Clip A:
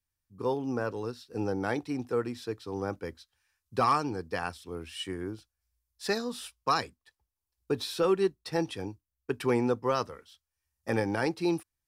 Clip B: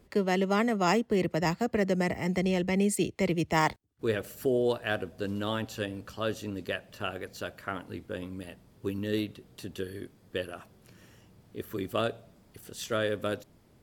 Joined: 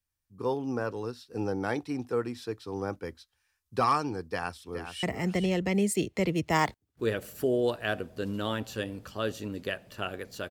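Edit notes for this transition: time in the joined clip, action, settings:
clip A
4.26–5.03 echo throw 0.42 s, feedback 15%, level -9 dB
5.03 switch to clip B from 2.05 s

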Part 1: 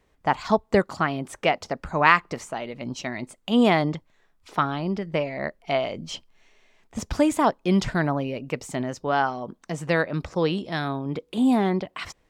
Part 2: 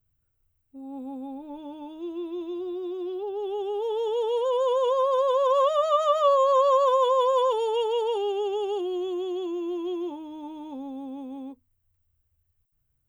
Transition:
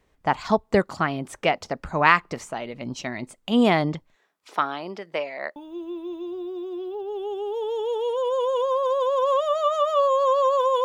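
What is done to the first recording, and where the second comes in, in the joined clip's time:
part 1
4.14–5.56 HPF 290 Hz -> 620 Hz
5.56 switch to part 2 from 1.84 s

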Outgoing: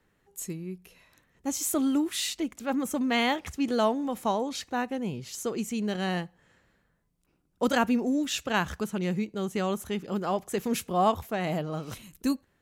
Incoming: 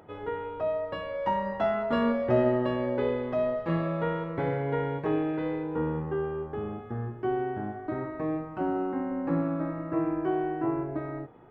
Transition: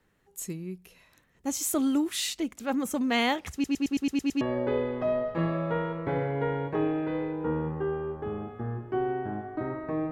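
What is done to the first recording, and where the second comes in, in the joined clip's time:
outgoing
3.53 stutter in place 0.11 s, 8 plays
4.41 switch to incoming from 2.72 s

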